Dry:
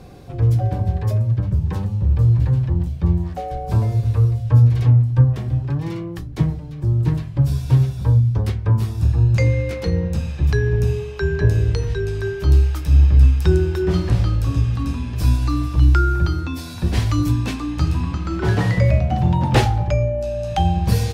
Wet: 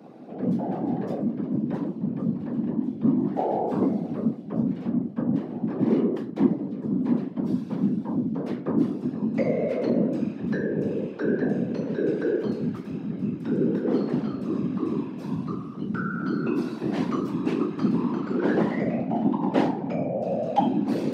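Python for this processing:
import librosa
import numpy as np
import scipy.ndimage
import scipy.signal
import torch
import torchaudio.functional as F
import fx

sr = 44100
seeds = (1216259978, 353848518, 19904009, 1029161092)

y = fx.lowpass(x, sr, hz=1100.0, slope=6)
y = fx.low_shelf(y, sr, hz=290.0, db=5.5)
y = fx.room_shoebox(y, sr, seeds[0], volume_m3=280.0, walls='furnished', distance_m=1.8)
y = fx.rider(y, sr, range_db=10, speed_s=0.5)
y = fx.whisperise(y, sr, seeds[1])
y = scipy.signal.sosfilt(scipy.signal.butter(4, 230.0, 'highpass', fs=sr, output='sos'), y)
y = y * 10.0 ** (-6.5 / 20.0)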